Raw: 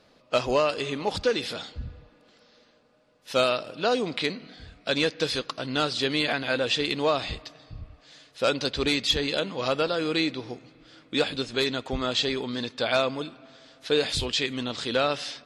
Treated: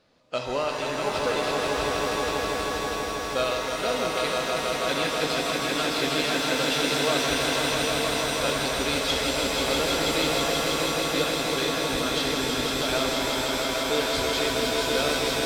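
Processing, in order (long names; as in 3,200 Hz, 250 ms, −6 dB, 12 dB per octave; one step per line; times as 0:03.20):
echo that builds up and dies away 161 ms, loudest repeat 5, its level −5 dB
reverb with rising layers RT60 2.6 s, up +7 semitones, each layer −2 dB, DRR 4 dB
level −5.5 dB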